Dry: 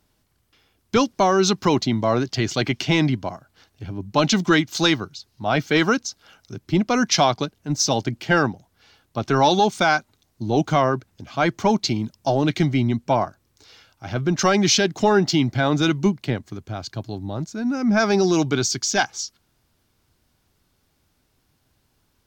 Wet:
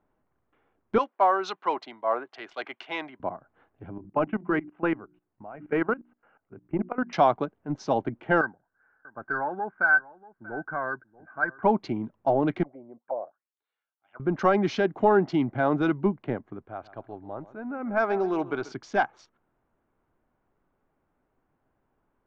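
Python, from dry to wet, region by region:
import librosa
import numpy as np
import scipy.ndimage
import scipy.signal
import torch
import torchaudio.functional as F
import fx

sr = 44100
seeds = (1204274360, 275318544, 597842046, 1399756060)

y = fx.chain(x, sr, fx.highpass(hz=690.0, slope=12),
    fx.peak_eq(hz=3400.0, db=3.0, octaves=1.2),
    fx.band_widen(depth_pct=70), at=(0.98, 3.2))
y = fx.chain(y, sr, fx.cheby1_lowpass(hz=2800.0, order=5),
    fx.hum_notches(base_hz=60, count=6),
    fx.level_steps(step_db=19), at=(3.98, 7.13))
y = fx.chain(y, sr, fx.ladder_lowpass(hz=1600.0, resonance_pct=90),
    fx.echo_single(ms=636, db=-20.0), at=(8.41, 11.63))
y = fx.chain(y, sr, fx.auto_wah(base_hz=540.0, top_hz=5000.0, q=7.1, full_db=-17.5, direction='down'),
    fx.air_absorb(metres=280.0), at=(12.63, 14.2))
y = fx.chain(y, sr, fx.lowpass(hz=7800.0, slope=12),
    fx.peak_eq(hz=170.0, db=-9.5, octaves=2.1),
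    fx.echo_feedback(ms=136, feedback_pct=29, wet_db=-16.5), at=(16.65, 18.72))
y = fx.wiener(y, sr, points=9)
y = scipy.signal.sosfilt(scipy.signal.butter(2, 1300.0, 'lowpass', fs=sr, output='sos'), y)
y = fx.peak_eq(y, sr, hz=76.0, db=-14.0, octaves=2.7)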